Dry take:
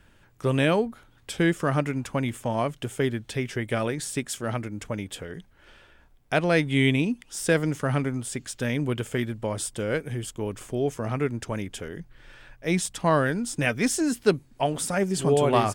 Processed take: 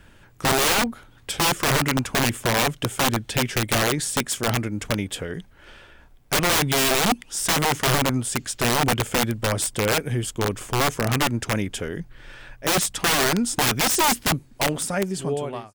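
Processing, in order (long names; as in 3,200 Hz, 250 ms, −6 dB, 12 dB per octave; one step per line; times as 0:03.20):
fade-out on the ending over 1.50 s
wrap-around overflow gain 21 dB
level +6.5 dB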